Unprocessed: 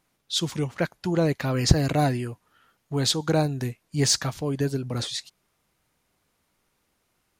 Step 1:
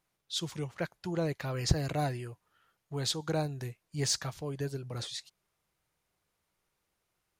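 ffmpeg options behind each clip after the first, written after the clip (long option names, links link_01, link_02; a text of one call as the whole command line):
ffmpeg -i in.wav -af "equalizer=frequency=250:width_type=o:width=0.35:gain=-9.5,volume=-8.5dB" out.wav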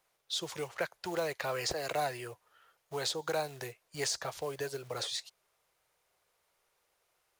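ffmpeg -i in.wav -filter_complex "[0:a]acrusher=bits=6:mode=log:mix=0:aa=0.000001,lowshelf=frequency=350:width_type=q:width=1.5:gain=-10,acrossover=split=250|810[link_01][link_02][link_03];[link_01]acompressor=threshold=-54dB:ratio=4[link_04];[link_02]acompressor=threshold=-41dB:ratio=4[link_05];[link_03]acompressor=threshold=-38dB:ratio=4[link_06];[link_04][link_05][link_06]amix=inputs=3:normalize=0,volume=5dB" out.wav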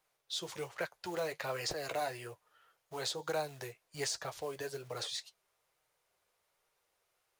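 ffmpeg -i in.wav -af "flanger=delay=6.4:depth=4.1:regen=-49:speed=1.2:shape=sinusoidal,volume=1dB" out.wav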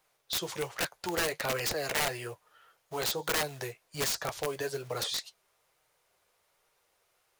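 ffmpeg -i in.wav -af "aeval=exprs='(mod(31.6*val(0)+1,2)-1)/31.6':channel_layout=same,volume=6.5dB" out.wav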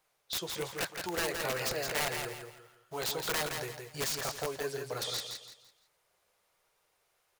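ffmpeg -i in.wav -af "aecho=1:1:168|336|504|672:0.531|0.17|0.0544|0.0174,volume=-3dB" out.wav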